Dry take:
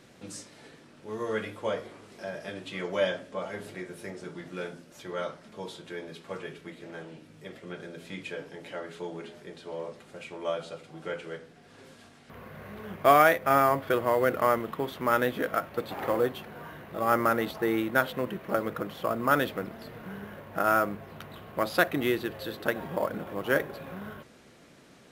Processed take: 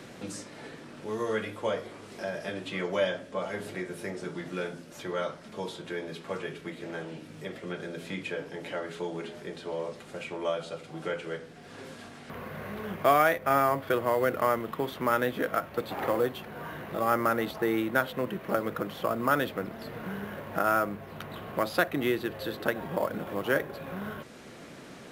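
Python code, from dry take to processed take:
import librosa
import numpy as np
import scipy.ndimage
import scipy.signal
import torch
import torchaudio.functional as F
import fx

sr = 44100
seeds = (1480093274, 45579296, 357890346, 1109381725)

y = fx.band_squash(x, sr, depth_pct=40)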